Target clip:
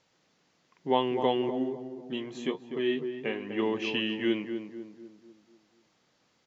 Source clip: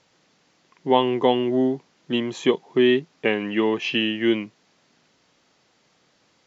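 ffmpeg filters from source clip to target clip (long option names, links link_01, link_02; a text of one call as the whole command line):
ffmpeg -i in.wav -filter_complex "[0:a]asplit=2[link_01][link_02];[link_02]adelay=248,lowpass=frequency=1200:poles=1,volume=-7dB,asplit=2[link_03][link_04];[link_04]adelay=248,lowpass=frequency=1200:poles=1,volume=0.48,asplit=2[link_05][link_06];[link_06]adelay=248,lowpass=frequency=1200:poles=1,volume=0.48,asplit=2[link_07][link_08];[link_08]adelay=248,lowpass=frequency=1200:poles=1,volume=0.48,asplit=2[link_09][link_10];[link_10]adelay=248,lowpass=frequency=1200:poles=1,volume=0.48,asplit=2[link_11][link_12];[link_12]adelay=248,lowpass=frequency=1200:poles=1,volume=0.48[link_13];[link_01][link_03][link_05][link_07][link_09][link_11][link_13]amix=inputs=7:normalize=0,asplit=3[link_14][link_15][link_16];[link_14]afade=type=out:start_time=1.49:duration=0.02[link_17];[link_15]flanger=delay=8.5:depth=6.5:regen=44:speed=1.1:shape=triangular,afade=type=in:start_time=1.49:duration=0.02,afade=type=out:start_time=3.58:duration=0.02[link_18];[link_16]afade=type=in:start_time=3.58:duration=0.02[link_19];[link_17][link_18][link_19]amix=inputs=3:normalize=0,volume=-7.5dB" out.wav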